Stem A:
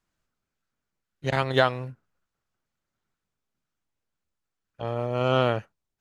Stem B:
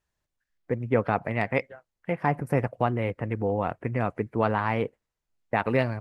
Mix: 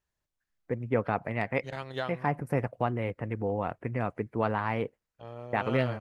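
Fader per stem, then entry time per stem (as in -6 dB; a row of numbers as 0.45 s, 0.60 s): -13.5 dB, -4.0 dB; 0.40 s, 0.00 s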